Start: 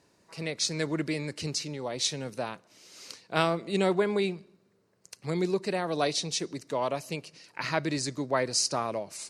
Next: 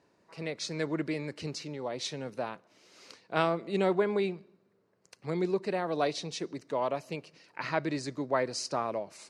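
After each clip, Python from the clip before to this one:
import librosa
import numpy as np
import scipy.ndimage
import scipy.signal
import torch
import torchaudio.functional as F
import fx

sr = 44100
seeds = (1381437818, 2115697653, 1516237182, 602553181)

y = fx.lowpass(x, sr, hz=1900.0, slope=6)
y = fx.low_shelf(y, sr, hz=150.0, db=-8.0)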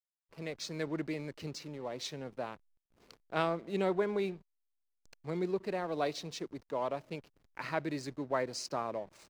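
y = fx.backlash(x, sr, play_db=-44.5)
y = y * 10.0 ** (-4.0 / 20.0)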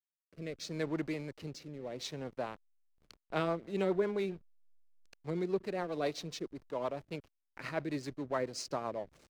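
y = fx.backlash(x, sr, play_db=-52.5)
y = fx.rotary_switch(y, sr, hz=0.75, then_hz=7.5, switch_at_s=2.73)
y = y * 10.0 ** (1.5 / 20.0)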